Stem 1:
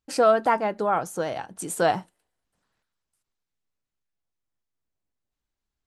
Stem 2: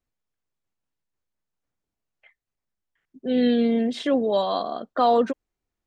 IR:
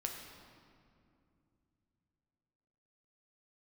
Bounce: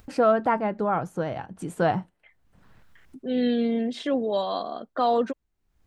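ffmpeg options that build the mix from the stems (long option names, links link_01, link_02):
-filter_complex "[0:a]bass=frequency=250:gain=10,treble=frequency=4000:gain=-14,volume=-2dB[link_01];[1:a]volume=-3.5dB[link_02];[link_01][link_02]amix=inputs=2:normalize=0,acompressor=mode=upward:threshold=-36dB:ratio=2.5"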